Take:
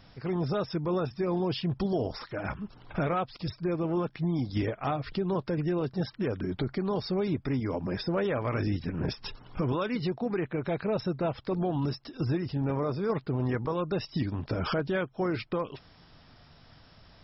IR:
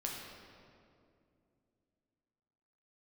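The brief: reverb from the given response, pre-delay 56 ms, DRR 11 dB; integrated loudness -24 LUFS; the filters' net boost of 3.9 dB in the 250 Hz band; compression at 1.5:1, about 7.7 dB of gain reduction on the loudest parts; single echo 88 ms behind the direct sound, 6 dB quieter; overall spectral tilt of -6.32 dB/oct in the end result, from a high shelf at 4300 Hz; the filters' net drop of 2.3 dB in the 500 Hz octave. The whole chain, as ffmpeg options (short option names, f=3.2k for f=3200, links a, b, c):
-filter_complex "[0:a]equalizer=f=250:t=o:g=8,equalizer=f=500:t=o:g=-7,highshelf=f=4.3k:g=6,acompressor=threshold=-44dB:ratio=1.5,aecho=1:1:88:0.501,asplit=2[a][b];[1:a]atrim=start_sample=2205,adelay=56[c];[b][c]afir=irnorm=-1:irlink=0,volume=-12dB[d];[a][d]amix=inputs=2:normalize=0,volume=11dB"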